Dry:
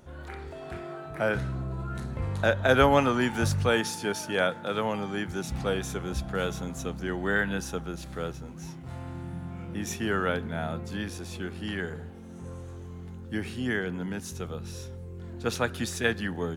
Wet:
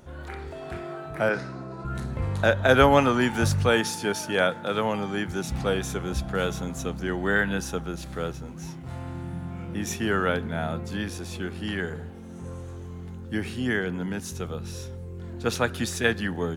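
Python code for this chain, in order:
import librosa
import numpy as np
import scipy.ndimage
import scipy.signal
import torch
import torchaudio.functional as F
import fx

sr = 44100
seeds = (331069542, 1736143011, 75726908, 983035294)

y = fx.cabinet(x, sr, low_hz=220.0, low_slope=12, high_hz=8900.0, hz=(3200.0, 5000.0, 7800.0), db=(-8, 8, -5), at=(1.29, 1.85))
y = F.gain(torch.from_numpy(y), 3.0).numpy()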